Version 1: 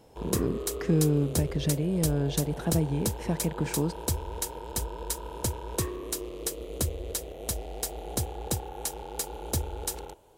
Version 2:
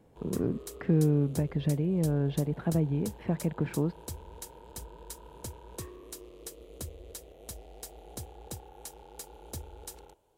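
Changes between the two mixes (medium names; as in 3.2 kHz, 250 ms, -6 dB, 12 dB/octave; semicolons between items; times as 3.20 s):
speech: add distance through air 420 m; background -11.5 dB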